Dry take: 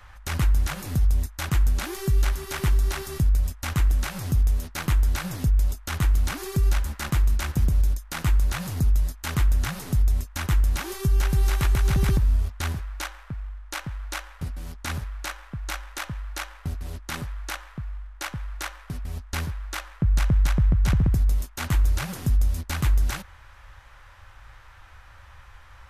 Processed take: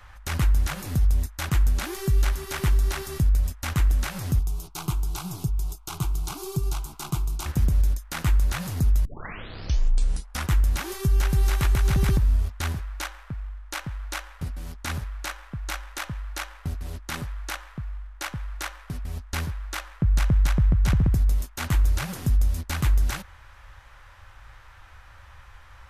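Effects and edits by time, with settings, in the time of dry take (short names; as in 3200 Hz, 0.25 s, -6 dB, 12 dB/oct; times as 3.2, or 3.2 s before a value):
4.39–7.46 fixed phaser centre 360 Hz, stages 8
9.05 tape start 1.47 s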